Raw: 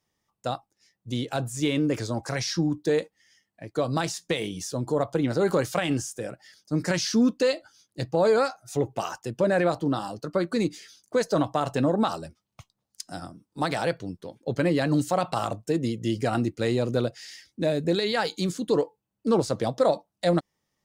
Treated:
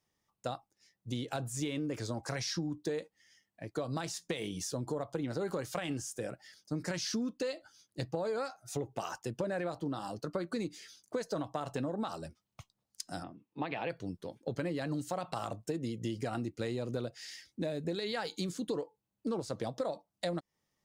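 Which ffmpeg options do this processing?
-filter_complex "[0:a]asplit=3[s0][s1][s2];[s0]afade=t=out:st=13.22:d=0.02[s3];[s1]highpass=140,equalizer=f=180:t=q:w=4:g=-4,equalizer=f=580:t=q:w=4:g=-3,equalizer=f=1400:t=q:w=4:g=-8,equalizer=f=2600:t=q:w=4:g=8,lowpass=f=3100:w=0.5412,lowpass=f=3100:w=1.3066,afade=t=in:st=13.22:d=0.02,afade=t=out:st=13.89:d=0.02[s4];[s2]afade=t=in:st=13.89:d=0.02[s5];[s3][s4][s5]amix=inputs=3:normalize=0,acompressor=threshold=0.0355:ratio=6,volume=0.668"

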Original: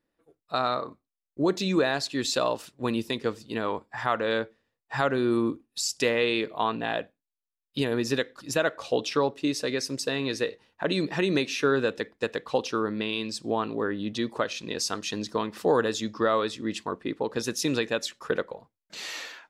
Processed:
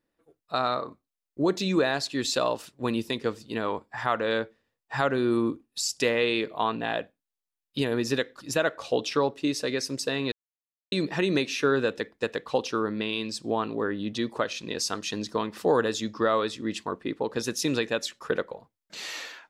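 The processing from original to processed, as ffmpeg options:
-filter_complex "[0:a]asplit=3[s0][s1][s2];[s0]atrim=end=10.32,asetpts=PTS-STARTPTS,afade=t=out:st=10.316:d=0.004:c=hsin[s3];[s1]atrim=start=10.32:end=10.92,asetpts=PTS-STARTPTS,volume=0[s4];[s2]atrim=start=10.92,asetpts=PTS-STARTPTS,afade=t=in:d=0.004:c=hsin[s5];[s3][s4][s5]concat=n=3:v=0:a=1"

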